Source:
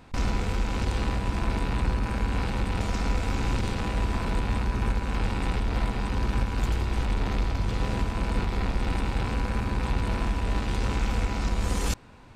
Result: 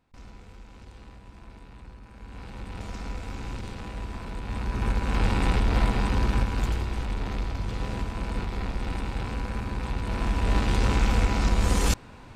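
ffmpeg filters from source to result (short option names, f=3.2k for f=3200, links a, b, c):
-af "volume=11.5dB,afade=t=in:st=2.13:d=0.74:silence=0.266073,afade=t=in:st=4.4:d=0.91:silence=0.237137,afade=t=out:st=5.99:d=1:silence=0.421697,afade=t=in:st=10.04:d=0.52:silence=0.421697"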